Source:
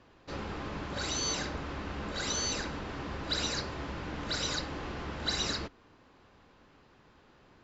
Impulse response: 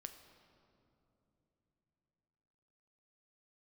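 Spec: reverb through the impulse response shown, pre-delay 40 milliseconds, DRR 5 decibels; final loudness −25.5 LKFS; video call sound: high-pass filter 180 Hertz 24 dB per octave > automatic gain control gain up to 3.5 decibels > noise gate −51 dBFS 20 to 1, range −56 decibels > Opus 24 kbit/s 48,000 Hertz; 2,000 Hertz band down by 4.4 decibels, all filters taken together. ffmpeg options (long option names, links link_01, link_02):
-filter_complex "[0:a]equalizer=frequency=2000:width_type=o:gain=-6,asplit=2[link_01][link_02];[1:a]atrim=start_sample=2205,adelay=40[link_03];[link_02][link_03]afir=irnorm=-1:irlink=0,volume=0dB[link_04];[link_01][link_04]amix=inputs=2:normalize=0,highpass=frequency=180:width=0.5412,highpass=frequency=180:width=1.3066,dynaudnorm=maxgain=3.5dB,agate=range=-56dB:threshold=-51dB:ratio=20,volume=9.5dB" -ar 48000 -c:a libopus -b:a 24k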